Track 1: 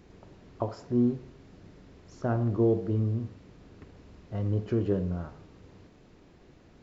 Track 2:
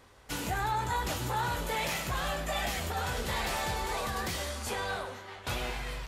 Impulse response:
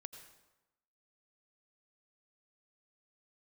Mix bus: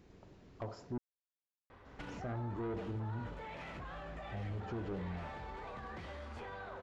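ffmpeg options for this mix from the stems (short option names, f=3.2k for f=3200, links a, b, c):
-filter_complex "[0:a]asoftclip=type=tanh:threshold=-25dB,volume=-6.5dB,asplit=3[a][b][c];[a]atrim=end=0.98,asetpts=PTS-STARTPTS,afade=t=out:st=0.976:d=0.004:c=hsin[d];[b]atrim=start=0.98:end=1.85,asetpts=PTS-STARTPTS,volume=0[e];[c]atrim=start=1.85,asetpts=PTS-STARTPTS,afade=t=in:d=0.004:c=hsin[f];[d][e][f]concat=n=3:v=0:a=1[g];[1:a]lowpass=2.1k,alimiter=level_in=8.5dB:limit=-24dB:level=0:latency=1,volume=-8.5dB,acompressor=threshold=-44dB:ratio=6,adelay=1700,volume=0.5dB[h];[g][h]amix=inputs=2:normalize=0,asoftclip=type=tanh:threshold=-27.5dB,alimiter=level_in=10dB:limit=-24dB:level=0:latency=1:release=102,volume=-10dB"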